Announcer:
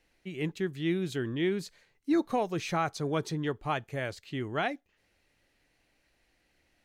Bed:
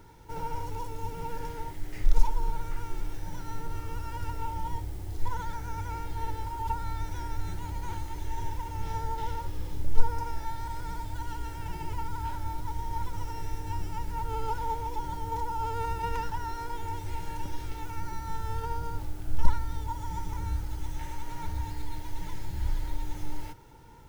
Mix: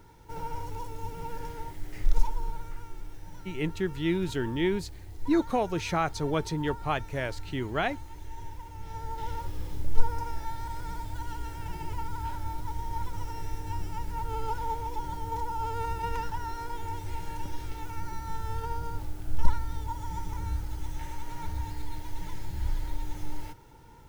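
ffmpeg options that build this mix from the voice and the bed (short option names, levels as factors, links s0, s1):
-filter_complex "[0:a]adelay=3200,volume=1.26[s0];[1:a]volume=1.88,afade=t=out:st=2.1:d=0.83:silence=0.501187,afade=t=in:st=8.86:d=0.53:silence=0.446684[s1];[s0][s1]amix=inputs=2:normalize=0"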